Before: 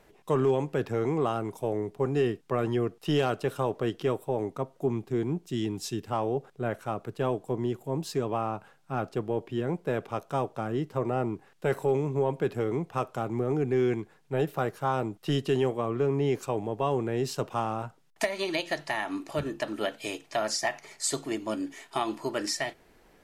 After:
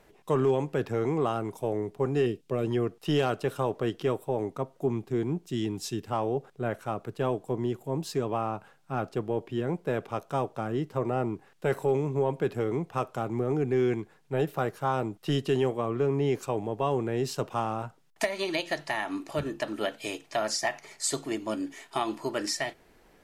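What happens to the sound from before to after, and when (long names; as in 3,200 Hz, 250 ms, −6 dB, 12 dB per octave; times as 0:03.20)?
0:02.26–0:02.71: flat-topped bell 1,200 Hz −8.5 dB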